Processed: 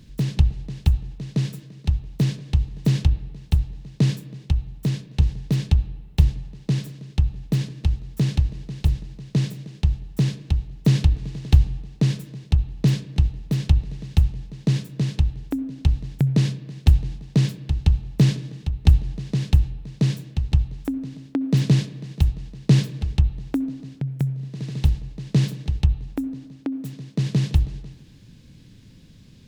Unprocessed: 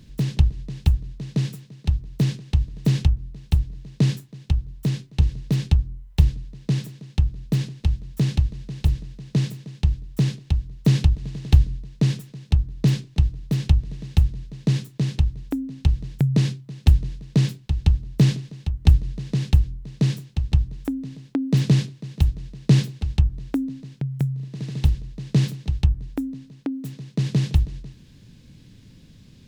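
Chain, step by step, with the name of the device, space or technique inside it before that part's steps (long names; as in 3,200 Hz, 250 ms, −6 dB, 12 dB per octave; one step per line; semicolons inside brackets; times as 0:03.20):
filtered reverb send (on a send: high-pass filter 170 Hz 12 dB per octave + low-pass filter 3,500 Hz + convolution reverb RT60 1.4 s, pre-delay 58 ms, DRR 15.5 dB)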